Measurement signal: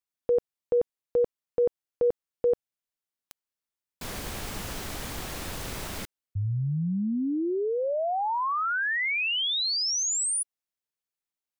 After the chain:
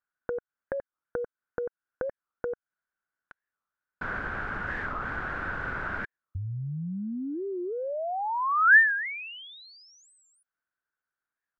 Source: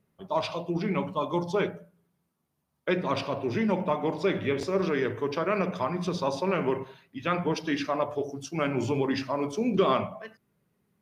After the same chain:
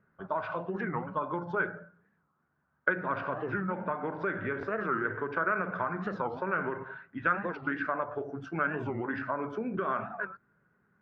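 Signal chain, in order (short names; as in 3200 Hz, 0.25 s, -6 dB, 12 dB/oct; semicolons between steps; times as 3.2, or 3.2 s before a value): compressor 6:1, threshold -32 dBFS; synth low-pass 1500 Hz, resonance Q 9.4; record warp 45 rpm, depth 250 cents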